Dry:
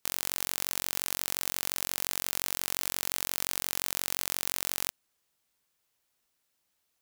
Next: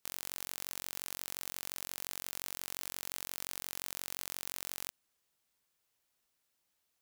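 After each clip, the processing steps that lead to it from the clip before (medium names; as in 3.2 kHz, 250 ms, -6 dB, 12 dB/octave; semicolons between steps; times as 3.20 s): peak limiter -10 dBFS, peak gain reduction 6 dB; trim -3 dB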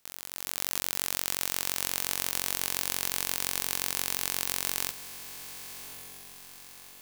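spectrogram pixelated in time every 50 ms; level rider gain up to 13.5 dB; echo that smears into a reverb 1161 ms, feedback 50%, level -12 dB; trim +1.5 dB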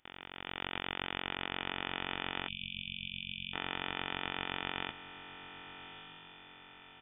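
comb 1.9 ms, depth 35%; frequency inversion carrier 3.5 kHz; spectral selection erased 2.48–3.53 s, 250–2300 Hz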